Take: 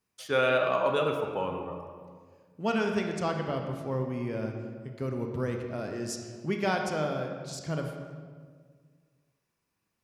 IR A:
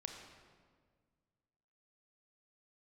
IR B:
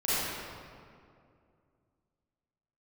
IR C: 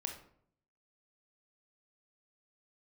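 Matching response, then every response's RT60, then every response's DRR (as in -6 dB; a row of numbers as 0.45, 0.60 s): A; 1.7, 2.3, 0.65 s; 3.0, -12.5, 3.0 dB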